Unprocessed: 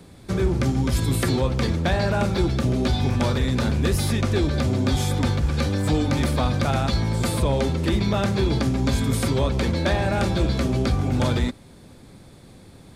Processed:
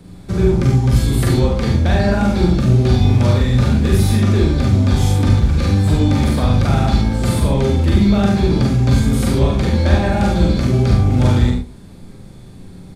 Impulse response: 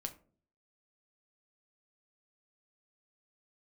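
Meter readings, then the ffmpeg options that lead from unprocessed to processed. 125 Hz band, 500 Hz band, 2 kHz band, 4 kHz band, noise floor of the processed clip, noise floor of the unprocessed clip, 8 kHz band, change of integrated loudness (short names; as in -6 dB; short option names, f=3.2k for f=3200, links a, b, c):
+9.0 dB, +5.0 dB, +2.5 dB, +2.5 dB, -37 dBFS, -47 dBFS, +2.5 dB, +7.5 dB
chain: -filter_complex "[0:a]lowshelf=f=190:g=10,aecho=1:1:50|73:0.596|0.473,asplit=2[a][b];[1:a]atrim=start_sample=2205,asetrate=66150,aresample=44100,adelay=40[c];[b][c]afir=irnorm=-1:irlink=0,volume=3.5dB[d];[a][d]amix=inputs=2:normalize=0,volume=-1.5dB"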